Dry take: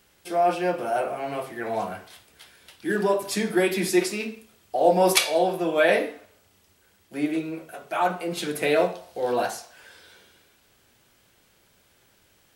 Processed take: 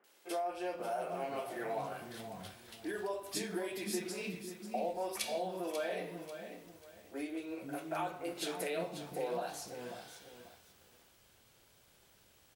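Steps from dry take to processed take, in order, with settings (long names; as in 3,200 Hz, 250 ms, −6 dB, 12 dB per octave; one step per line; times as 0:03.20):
downward compressor 6 to 1, threshold −31 dBFS, peak gain reduction 16.5 dB
three-band delay without the direct sound mids, highs, lows 40/500 ms, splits 260/1,800 Hz
feedback echo at a low word length 541 ms, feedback 35%, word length 9 bits, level −9.5 dB
level −3.5 dB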